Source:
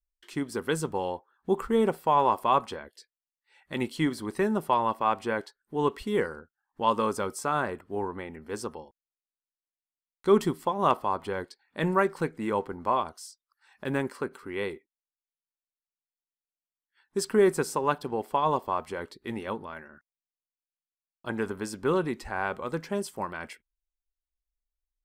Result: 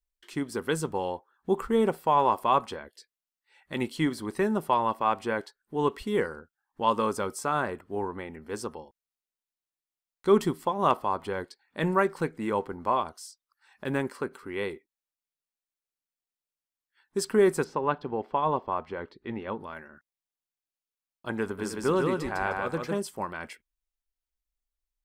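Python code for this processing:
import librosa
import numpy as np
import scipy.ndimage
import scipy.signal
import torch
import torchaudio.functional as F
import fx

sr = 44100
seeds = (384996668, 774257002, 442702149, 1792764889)

y = fx.air_absorb(x, sr, metres=240.0, at=(17.64, 19.6))
y = fx.echo_feedback(y, sr, ms=154, feedback_pct=24, wet_db=-3, at=(21.58, 22.97), fade=0.02)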